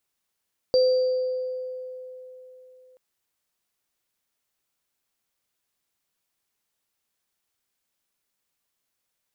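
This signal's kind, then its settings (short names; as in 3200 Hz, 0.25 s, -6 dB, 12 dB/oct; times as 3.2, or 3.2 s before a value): sine partials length 2.23 s, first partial 510 Hz, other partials 4680 Hz, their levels -12 dB, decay 3.58 s, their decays 1.29 s, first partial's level -15 dB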